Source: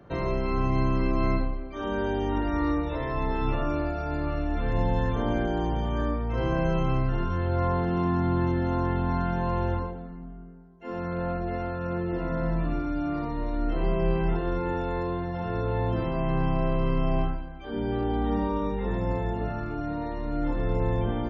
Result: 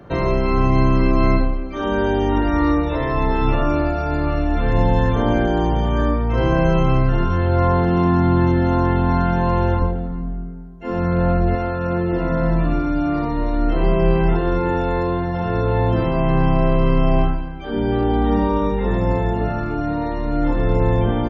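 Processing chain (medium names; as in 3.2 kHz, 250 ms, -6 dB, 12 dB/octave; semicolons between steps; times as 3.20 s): 9.81–11.55 s: bass shelf 160 Hz +9 dB; delay 390 ms -23 dB; trim +9 dB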